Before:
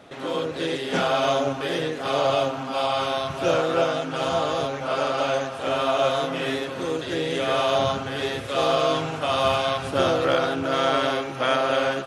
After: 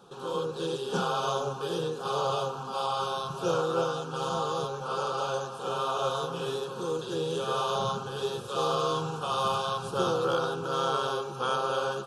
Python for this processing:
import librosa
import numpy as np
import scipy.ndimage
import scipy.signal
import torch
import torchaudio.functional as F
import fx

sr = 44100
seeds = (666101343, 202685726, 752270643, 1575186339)

y = fx.peak_eq(x, sr, hz=1900.0, db=-12.5, octaves=0.21)
y = fx.fixed_phaser(y, sr, hz=420.0, stages=8)
y = y * 10.0 ** (-2.0 / 20.0)